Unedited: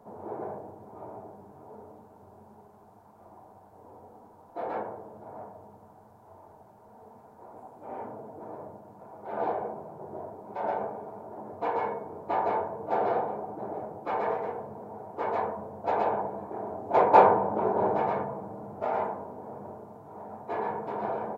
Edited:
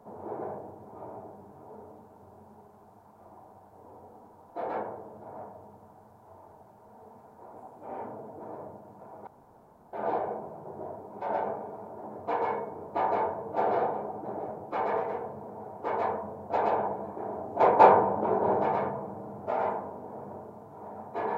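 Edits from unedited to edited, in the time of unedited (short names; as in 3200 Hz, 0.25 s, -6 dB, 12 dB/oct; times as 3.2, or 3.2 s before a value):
9.27 insert room tone 0.66 s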